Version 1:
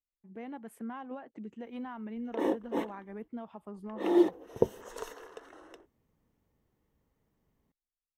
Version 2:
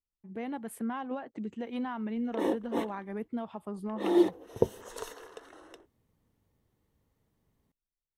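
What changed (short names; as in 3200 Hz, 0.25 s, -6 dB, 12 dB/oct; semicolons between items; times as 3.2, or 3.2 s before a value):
speech +5.5 dB; master: add fifteen-band EQ 100 Hz +5 dB, 4000 Hz +5 dB, 10000 Hz +7 dB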